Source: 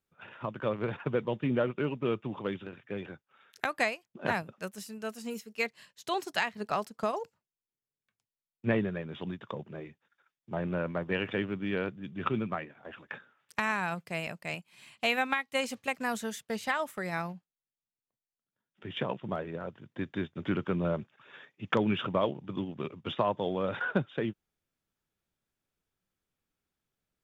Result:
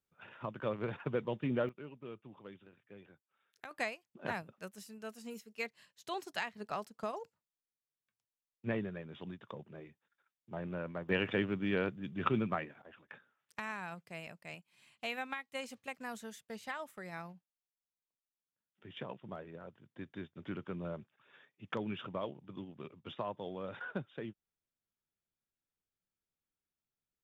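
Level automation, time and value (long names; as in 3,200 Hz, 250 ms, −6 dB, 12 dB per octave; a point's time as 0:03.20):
−5 dB
from 0:01.69 −17 dB
from 0:03.71 −8 dB
from 0:11.09 −1 dB
from 0:12.82 −11 dB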